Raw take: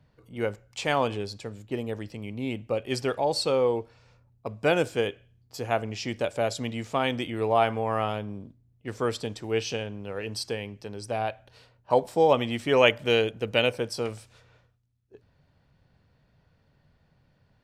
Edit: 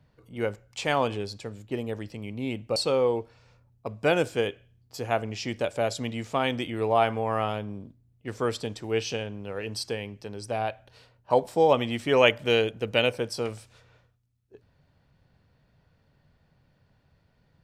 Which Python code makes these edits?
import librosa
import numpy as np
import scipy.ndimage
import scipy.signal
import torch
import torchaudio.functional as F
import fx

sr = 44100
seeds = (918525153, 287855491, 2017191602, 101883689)

y = fx.edit(x, sr, fx.cut(start_s=2.76, length_s=0.6), tone=tone)